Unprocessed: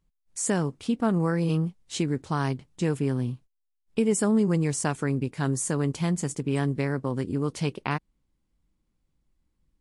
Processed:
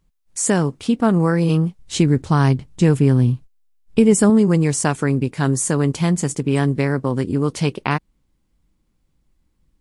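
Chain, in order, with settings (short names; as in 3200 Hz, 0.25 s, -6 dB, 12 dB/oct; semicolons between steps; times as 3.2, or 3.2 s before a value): 1.79–4.3 low shelf 140 Hz +11 dB; gain +8 dB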